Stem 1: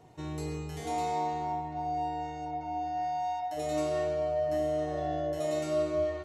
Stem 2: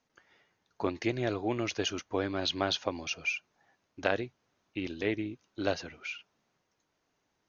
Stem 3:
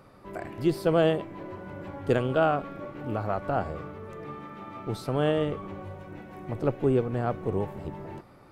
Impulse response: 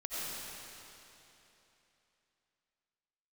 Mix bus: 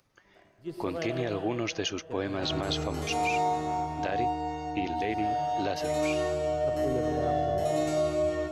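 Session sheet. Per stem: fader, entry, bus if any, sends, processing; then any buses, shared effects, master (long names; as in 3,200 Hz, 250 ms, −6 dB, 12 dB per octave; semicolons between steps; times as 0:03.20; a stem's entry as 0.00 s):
+1.0 dB, 2.25 s, send −6.5 dB, no processing
+2.0 dB, 0.00 s, no send, notch filter 1,400 Hz
−13.5 dB, 0.00 s, send −7 dB, upward compression, threshold −34 dBFS; multiband upward and downward expander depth 100%; automatic ducking −19 dB, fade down 1.75 s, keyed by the second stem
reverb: on, RT60 3.2 s, pre-delay 50 ms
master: brickwall limiter −18.5 dBFS, peak gain reduction 10 dB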